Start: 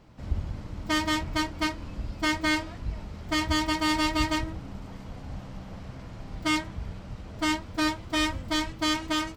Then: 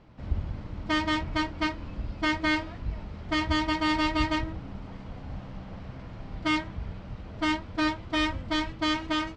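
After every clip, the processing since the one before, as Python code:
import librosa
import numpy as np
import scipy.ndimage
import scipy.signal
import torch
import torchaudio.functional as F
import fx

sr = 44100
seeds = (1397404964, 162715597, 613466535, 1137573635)

y = scipy.signal.sosfilt(scipy.signal.butter(2, 4000.0, 'lowpass', fs=sr, output='sos'), x)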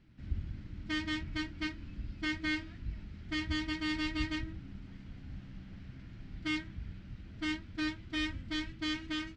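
y = fx.band_shelf(x, sr, hz=720.0, db=-13.5, octaves=1.7)
y = y * librosa.db_to_amplitude(-7.0)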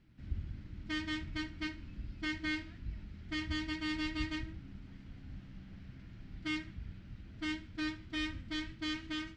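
y = fx.echo_feedback(x, sr, ms=74, feedback_pct=31, wet_db=-17.5)
y = y * librosa.db_to_amplitude(-2.5)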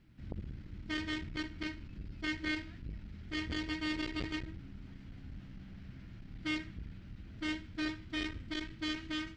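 y = fx.transformer_sat(x, sr, knee_hz=350.0)
y = y * librosa.db_to_amplitude(2.0)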